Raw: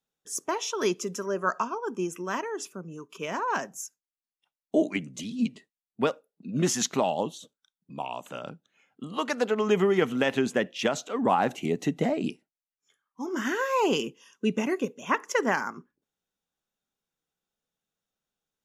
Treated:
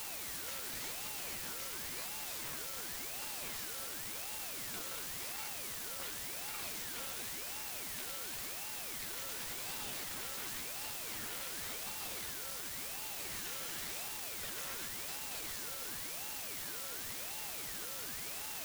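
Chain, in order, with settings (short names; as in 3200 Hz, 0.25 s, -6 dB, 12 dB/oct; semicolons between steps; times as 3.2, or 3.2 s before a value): LPF 7200 Hz 24 dB/oct; de-hum 53.49 Hz, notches 38; spectral gate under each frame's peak -25 dB weak; sample leveller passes 5; compressor, threshold -43 dBFS, peak gain reduction 15 dB; whine 940 Hz -45 dBFS; requantised 6-bit, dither triangular; ring modulator with a swept carrier 1100 Hz, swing 65%, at 0.92 Hz; gain -4 dB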